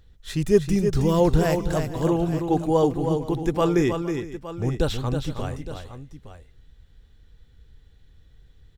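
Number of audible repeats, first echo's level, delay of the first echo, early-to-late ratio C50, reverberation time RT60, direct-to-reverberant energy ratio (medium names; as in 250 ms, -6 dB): 3, -7.0 dB, 319 ms, no reverb, no reverb, no reverb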